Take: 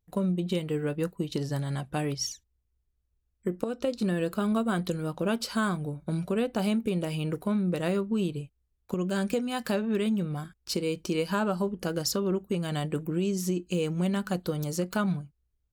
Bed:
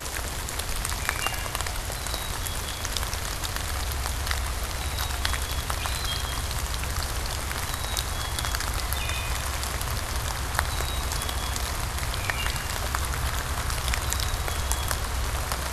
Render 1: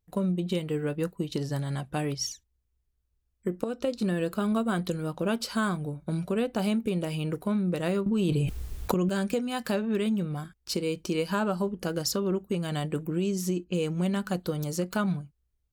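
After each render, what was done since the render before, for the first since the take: 8.06–9.09 fast leveller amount 100%; 13.64–14.22 low-pass opened by the level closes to 1300 Hz, open at -25 dBFS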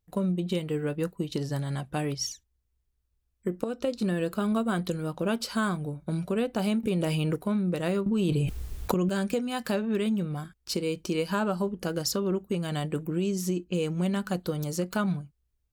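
6.83–7.36 fast leveller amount 70%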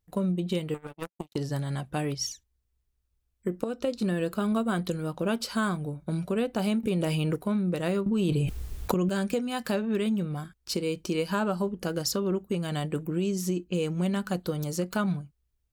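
0.74–1.36 power-law curve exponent 3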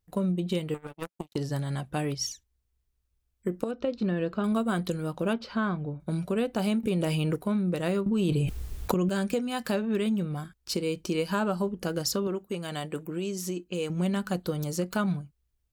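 3.71–4.44 air absorption 190 m; 5.33–6 air absorption 250 m; 12.27–13.9 low shelf 210 Hz -11 dB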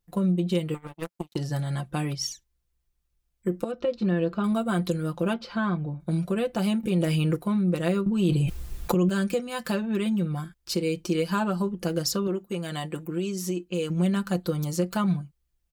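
comb 5.8 ms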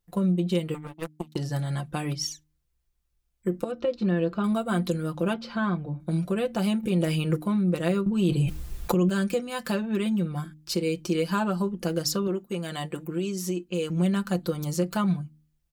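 de-hum 76.49 Hz, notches 4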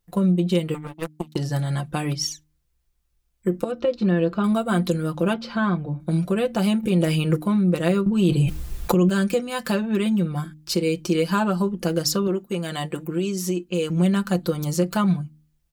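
gain +4.5 dB

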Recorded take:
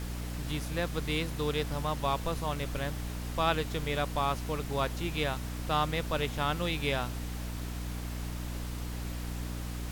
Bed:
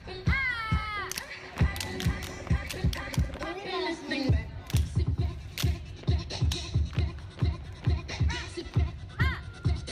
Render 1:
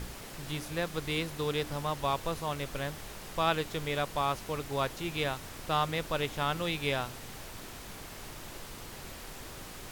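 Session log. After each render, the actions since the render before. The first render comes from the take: de-hum 60 Hz, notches 5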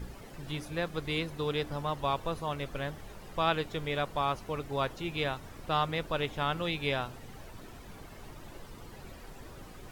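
denoiser 11 dB, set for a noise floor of -46 dBFS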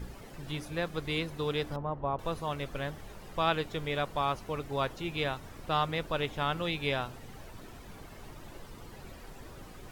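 1.76–2.19 LPF 1000 Hz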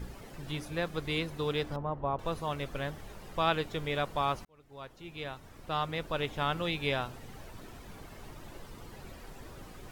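1.53–2.32 median filter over 3 samples; 4.45–6.42 fade in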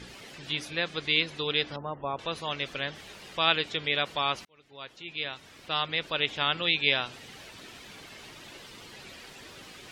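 weighting filter D; spectral gate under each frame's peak -30 dB strong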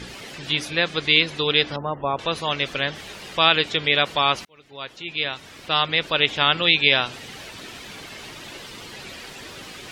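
gain +8.5 dB; limiter -2 dBFS, peak gain reduction 3 dB

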